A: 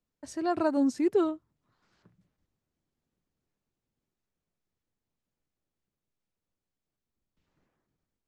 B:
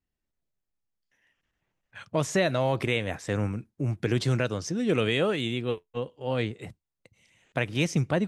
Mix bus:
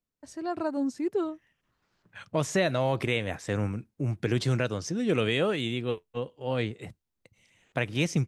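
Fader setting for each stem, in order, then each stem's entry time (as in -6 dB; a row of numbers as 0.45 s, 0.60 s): -3.5 dB, -1.0 dB; 0.00 s, 0.20 s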